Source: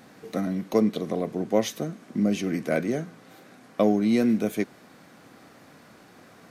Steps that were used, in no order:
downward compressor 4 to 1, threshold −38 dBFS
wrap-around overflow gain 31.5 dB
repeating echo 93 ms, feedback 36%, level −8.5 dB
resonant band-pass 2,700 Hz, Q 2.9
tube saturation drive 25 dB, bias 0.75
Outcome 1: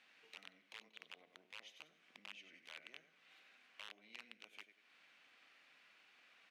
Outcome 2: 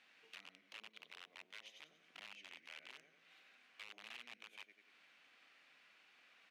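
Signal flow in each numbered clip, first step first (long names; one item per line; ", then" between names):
downward compressor, then repeating echo, then tube saturation, then wrap-around overflow, then resonant band-pass
repeating echo, then downward compressor, then wrap-around overflow, then tube saturation, then resonant band-pass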